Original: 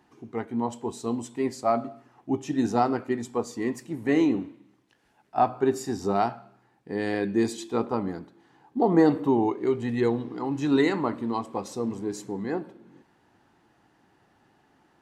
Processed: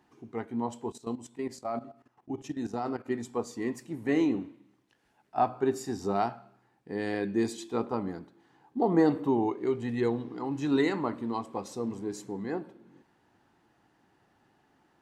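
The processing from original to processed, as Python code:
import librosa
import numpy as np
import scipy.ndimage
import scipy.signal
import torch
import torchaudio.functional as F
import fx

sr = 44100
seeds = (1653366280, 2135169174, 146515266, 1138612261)

y = fx.level_steps(x, sr, step_db=14, at=(0.9, 3.06))
y = F.gain(torch.from_numpy(y), -4.0).numpy()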